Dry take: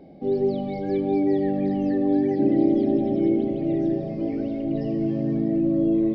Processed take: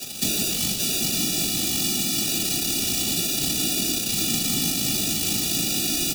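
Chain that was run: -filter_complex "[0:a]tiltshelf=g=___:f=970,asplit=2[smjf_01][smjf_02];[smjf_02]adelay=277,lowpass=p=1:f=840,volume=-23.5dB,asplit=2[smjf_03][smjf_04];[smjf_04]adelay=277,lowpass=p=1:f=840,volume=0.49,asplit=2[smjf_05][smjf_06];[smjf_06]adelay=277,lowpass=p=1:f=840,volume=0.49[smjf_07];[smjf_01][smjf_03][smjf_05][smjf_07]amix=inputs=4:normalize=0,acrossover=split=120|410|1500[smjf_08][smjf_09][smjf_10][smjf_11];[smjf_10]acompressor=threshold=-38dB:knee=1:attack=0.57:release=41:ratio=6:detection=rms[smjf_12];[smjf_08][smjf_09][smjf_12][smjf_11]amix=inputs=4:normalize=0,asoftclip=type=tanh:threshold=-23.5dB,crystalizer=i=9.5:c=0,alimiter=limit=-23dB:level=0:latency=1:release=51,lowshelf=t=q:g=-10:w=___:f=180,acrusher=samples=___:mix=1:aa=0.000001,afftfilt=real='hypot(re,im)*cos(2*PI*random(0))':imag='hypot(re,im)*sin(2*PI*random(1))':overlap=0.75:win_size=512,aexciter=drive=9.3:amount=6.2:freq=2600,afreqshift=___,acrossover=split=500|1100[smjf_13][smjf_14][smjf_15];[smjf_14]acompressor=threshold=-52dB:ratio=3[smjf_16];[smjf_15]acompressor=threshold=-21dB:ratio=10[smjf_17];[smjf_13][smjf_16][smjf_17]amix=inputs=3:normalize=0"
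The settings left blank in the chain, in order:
5, 3, 41, -44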